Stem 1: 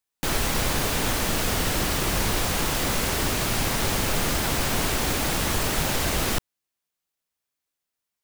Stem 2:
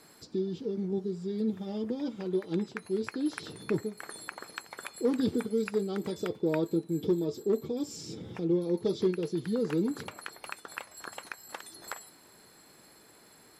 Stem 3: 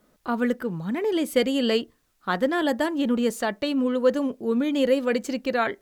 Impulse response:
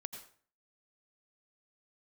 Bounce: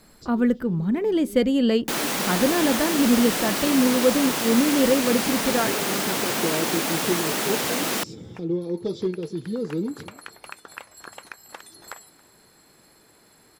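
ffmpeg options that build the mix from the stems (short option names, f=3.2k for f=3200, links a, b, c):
-filter_complex "[0:a]highpass=f=190:w=0.5412,highpass=f=190:w=1.3066,adelay=1650,volume=0.5dB[a];[1:a]volume=1dB,asplit=2[b][c];[c]volume=-22dB[d];[2:a]lowshelf=f=340:g=11.5,volume=-3.5dB,asplit=2[e][f];[f]apad=whole_len=599694[g];[b][g]sidechaincompress=threshold=-33dB:ratio=8:attack=5.4:release=226[h];[d]aecho=0:1:277:1[i];[a][h][e][i]amix=inputs=4:normalize=0,lowshelf=f=86:g=7"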